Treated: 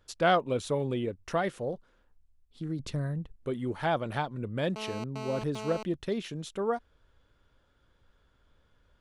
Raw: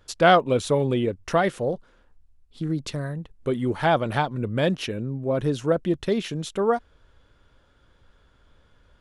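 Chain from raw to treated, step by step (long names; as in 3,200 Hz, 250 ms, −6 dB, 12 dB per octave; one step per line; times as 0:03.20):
0:02.79–0:03.36: low-shelf EQ 260 Hz +9 dB
0:04.76–0:05.83: phone interference −31 dBFS
level −8 dB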